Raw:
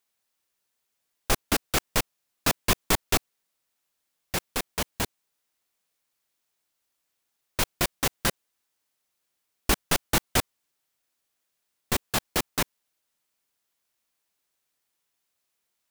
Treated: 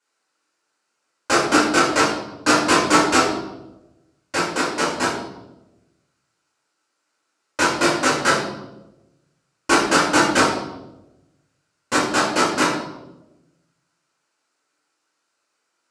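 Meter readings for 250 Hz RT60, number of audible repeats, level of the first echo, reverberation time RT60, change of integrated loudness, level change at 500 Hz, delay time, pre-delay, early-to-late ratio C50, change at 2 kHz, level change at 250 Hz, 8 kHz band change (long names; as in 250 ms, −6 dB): 1.3 s, no echo audible, no echo audible, 1.0 s, +9.0 dB, +12.0 dB, no echo audible, 3 ms, 2.0 dB, +12.0 dB, +13.0 dB, +5.5 dB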